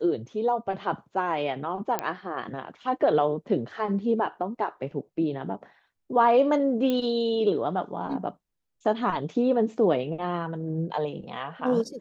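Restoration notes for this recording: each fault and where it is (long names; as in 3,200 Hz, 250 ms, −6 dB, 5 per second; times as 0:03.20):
0:01.99: click −11 dBFS
0:06.90: click −15 dBFS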